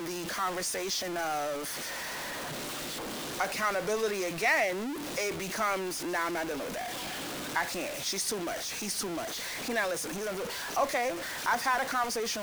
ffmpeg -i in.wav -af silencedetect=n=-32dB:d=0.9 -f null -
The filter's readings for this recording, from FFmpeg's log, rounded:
silence_start: 1.56
silence_end: 3.40 | silence_duration: 1.84